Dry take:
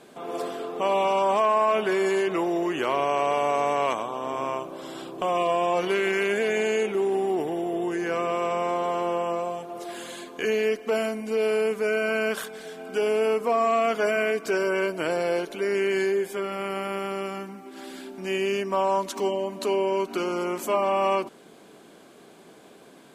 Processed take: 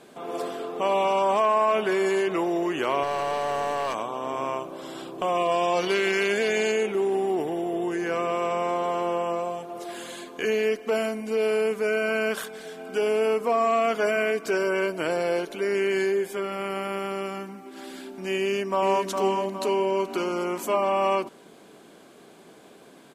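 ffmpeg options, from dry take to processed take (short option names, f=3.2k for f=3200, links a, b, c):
-filter_complex "[0:a]asettb=1/sr,asplit=3[a][b][c];[a]atrim=end=3.034[d];[b]atrim=start=3.03:end=3.95,asetpts=PTS-STARTPTS,afade=t=in:d=0.004:c=qsin,afade=t=out:st=0.916:d=0.004:c=qsin,asoftclip=type=hard:threshold=-23dB[e];[c]atrim=start=3.946[f];[d][e]acrossfade=d=0.004:c1=hsin:c2=qsin[g];[g][f]acrossfade=d=0.004:c1=qsin:c2=hsin,asettb=1/sr,asplit=3[h][i][j];[h]atrim=end=5.514[k];[i]atrim=start=5.51:end=6.72,asetpts=PTS-STARTPTS,afade=t=in:d=0.004:c=qsin,afade=t=out:st=1.206:d=0.004:c=qsin,equalizer=f=4.7k:t=o:w=0.94:g=10[l];[j]atrim=start=6.716[m];[k][l]acrossfade=d=0.004:c1=hsin:c2=qsin[n];[n][m]acrossfade=d=0.004:c1=qsin:c2=hsin,asplit=2[o][p];[p]afade=t=in:st=18.41:d=0.01,afade=t=out:st=19.08:d=0.01,aecho=0:1:410|820|1230|1640|2050|2460:0.630957|0.283931|0.127769|0.057496|0.0258732|0.0116429[q];[o][q]amix=inputs=2:normalize=0"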